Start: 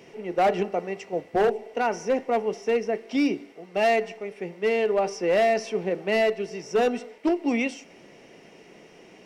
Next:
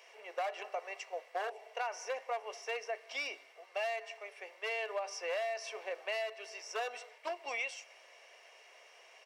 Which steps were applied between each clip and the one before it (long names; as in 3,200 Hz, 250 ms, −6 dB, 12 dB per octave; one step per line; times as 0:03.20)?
high-pass filter 690 Hz 24 dB per octave
comb filter 1.8 ms, depth 33%
downward compressor 12 to 1, threshold −29 dBFS, peak gain reduction 10 dB
level −4 dB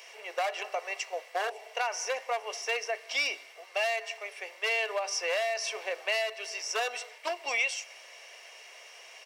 high-shelf EQ 2,300 Hz +9 dB
level +4.5 dB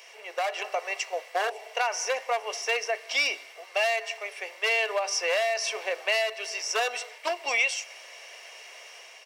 automatic gain control gain up to 4 dB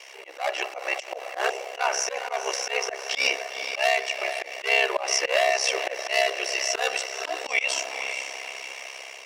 feedback delay with all-pass diffusion 484 ms, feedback 49%, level −10 dB
ring modulation 33 Hz
volume swells 107 ms
level +7.5 dB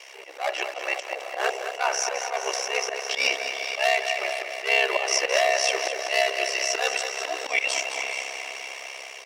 repeating echo 213 ms, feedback 42%, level −8.5 dB